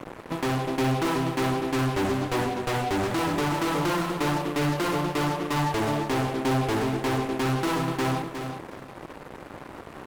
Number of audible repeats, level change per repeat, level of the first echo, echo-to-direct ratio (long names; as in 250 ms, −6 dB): 2, −13.5 dB, −7.5 dB, −7.5 dB